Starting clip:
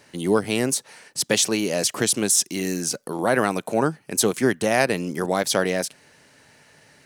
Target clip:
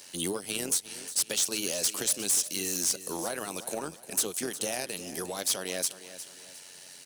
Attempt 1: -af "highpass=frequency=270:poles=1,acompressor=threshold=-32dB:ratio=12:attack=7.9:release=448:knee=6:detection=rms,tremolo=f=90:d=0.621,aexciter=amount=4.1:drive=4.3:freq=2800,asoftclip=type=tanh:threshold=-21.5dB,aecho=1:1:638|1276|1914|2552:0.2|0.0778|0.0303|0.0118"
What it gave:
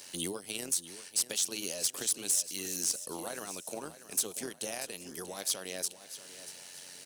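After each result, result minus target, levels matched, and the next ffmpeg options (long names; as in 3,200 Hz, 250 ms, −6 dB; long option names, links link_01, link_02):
echo 280 ms late; downward compressor: peak gain reduction +7 dB
-af "highpass=frequency=270:poles=1,acompressor=threshold=-32dB:ratio=12:attack=7.9:release=448:knee=6:detection=rms,tremolo=f=90:d=0.621,aexciter=amount=4.1:drive=4.3:freq=2800,asoftclip=type=tanh:threshold=-21.5dB,aecho=1:1:358|716|1074|1432:0.2|0.0778|0.0303|0.0118"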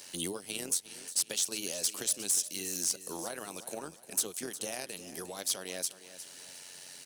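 downward compressor: peak gain reduction +7 dB
-af "highpass=frequency=270:poles=1,acompressor=threshold=-24.5dB:ratio=12:attack=7.9:release=448:knee=6:detection=rms,tremolo=f=90:d=0.621,aexciter=amount=4.1:drive=4.3:freq=2800,asoftclip=type=tanh:threshold=-21.5dB,aecho=1:1:358|716|1074|1432:0.2|0.0778|0.0303|0.0118"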